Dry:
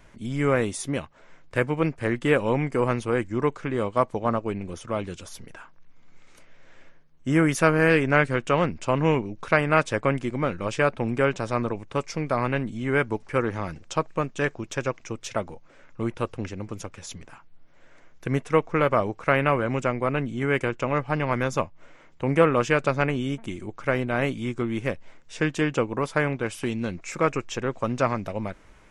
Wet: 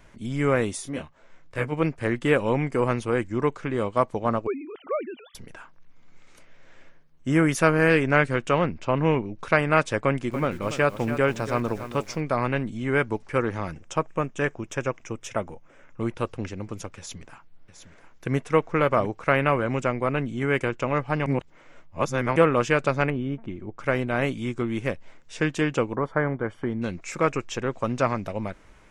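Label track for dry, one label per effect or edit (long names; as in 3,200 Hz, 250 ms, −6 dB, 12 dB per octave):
0.790000	1.710000	micro pitch shift up and down each way 21 cents → 37 cents
4.470000	5.350000	three sine waves on the formant tracks
8.580000	9.390000	high-frequency loss of the air 120 metres
10.030000	12.200000	feedback echo at a low word length 284 ms, feedback 35%, word length 7 bits, level −11 dB
13.710000	16.010000	parametric band 4,300 Hz −14.5 dB 0.33 octaves
16.970000	19.060000	single-tap delay 710 ms −10.5 dB
21.260000	22.360000	reverse
23.100000	23.790000	head-to-tape spacing loss at 10 kHz 36 dB
25.950000	26.820000	Savitzky-Golay smoothing over 41 samples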